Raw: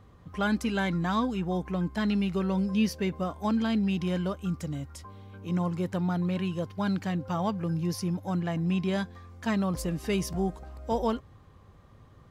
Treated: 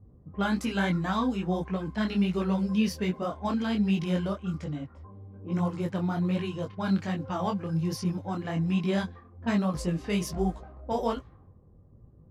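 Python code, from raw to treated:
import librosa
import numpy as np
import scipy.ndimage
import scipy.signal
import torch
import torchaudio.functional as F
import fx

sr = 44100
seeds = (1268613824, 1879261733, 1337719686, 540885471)

y = fx.env_lowpass(x, sr, base_hz=340.0, full_db=-25.5)
y = fx.detune_double(y, sr, cents=43)
y = y * 10.0 ** (4.0 / 20.0)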